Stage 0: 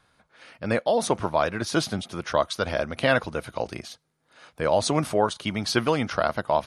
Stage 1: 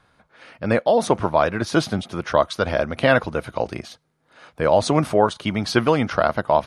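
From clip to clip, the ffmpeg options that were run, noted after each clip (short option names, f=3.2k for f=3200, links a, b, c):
-af "highshelf=f=3.3k:g=-8,volume=5.5dB"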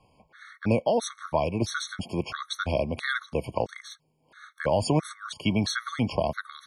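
-filter_complex "[0:a]acrossover=split=190|3000[a][b][c];[b]acompressor=threshold=-23dB:ratio=3[d];[a][d][c]amix=inputs=3:normalize=0,afftfilt=real='re*gt(sin(2*PI*1.5*pts/sr)*(1-2*mod(floor(b*sr/1024/1100),2)),0)':imag='im*gt(sin(2*PI*1.5*pts/sr)*(1-2*mod(floor(b*sr/1024/1100),2)),0)':win_size=1024:overlap=0.75"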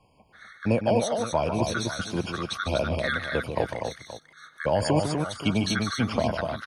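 -af "aecho=1:1:150|210|247|526:0.398|0.126|0.562|0.2"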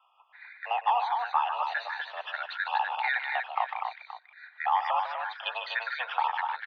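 -af "highpass=f=510:t=q:w=0.5412,highpass=f=510:t=q:w=1.307,lowpass=f=3.2k:t=q:w=0.5176,lowpass=f=3.2k:t=q:w=0.7071,lowpass=f=3.2k:t=q:w=1.932,afreqshift=250"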